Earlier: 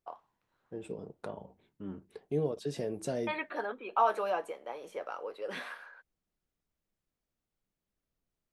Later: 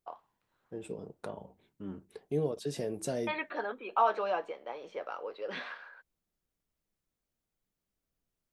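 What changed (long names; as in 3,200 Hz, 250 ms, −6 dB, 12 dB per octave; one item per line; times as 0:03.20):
first voice: add low-pass filter 4,900 Hz 24 dB per octave
master: add high-shelf EQ 5,700 Hz +6.5 dB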